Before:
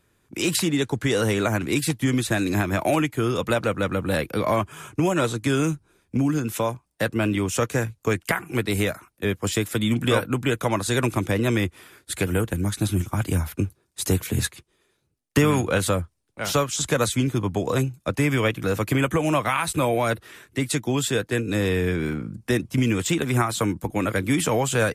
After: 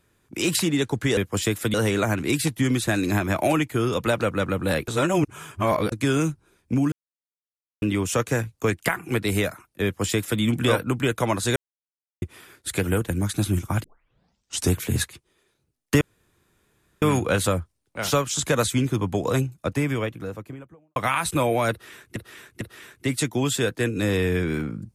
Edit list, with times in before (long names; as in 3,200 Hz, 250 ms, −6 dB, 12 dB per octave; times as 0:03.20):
0:04.31–0:05.35: reverse
0:06.35–0:07.25: silence
0:09.27–0:09.84: duplicate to 0:01.17
0:10.99–0:11.65: silence
0:13.27: tape start 0.90 s
0:15.44: splice in room tone 1.01 s
0:17.75–0:19.38: fade out and dull
0:20.13–0:20.58: repeat, 3 plays